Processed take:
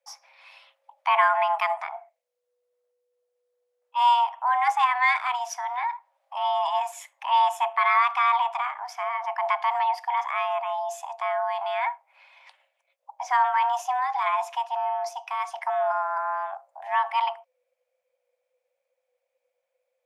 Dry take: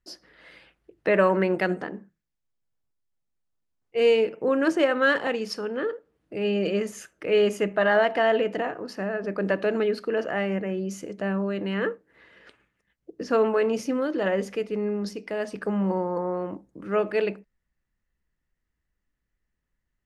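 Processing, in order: dynamic EQ 3700 Hz, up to -4 dB, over -43 dBFS, Q 1.2; frequency shift +490 Hz

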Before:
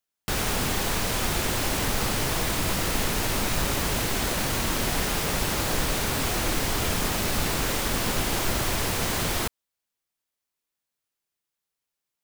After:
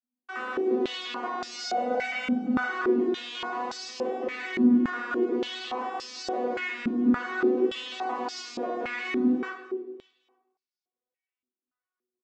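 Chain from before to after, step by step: arpeggiated vocoder bare fifth, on B3, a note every 0.176 s; 1.49–2.69 comb 1.4 ms, depth 93%; vibrato 0.55 Hz 41 cents; feedback echo 0.287 s, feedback 34%, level -17.5 dB; shoebox room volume 270 m³, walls mixed, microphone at 1.9 m; stepped band-pass 3.5 Hz 240–5100 Hz; gain +3.5 dB

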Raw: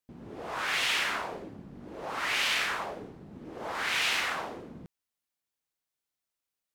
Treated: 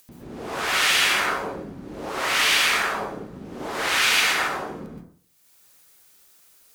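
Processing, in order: upward compressor, threshold -51 dBFS; high shelf 4000 Hz +9 dB; reverb RT60 0.55 s, pre-delay 0.113 s, DRR -3.5 dB; gain +2.5 dB

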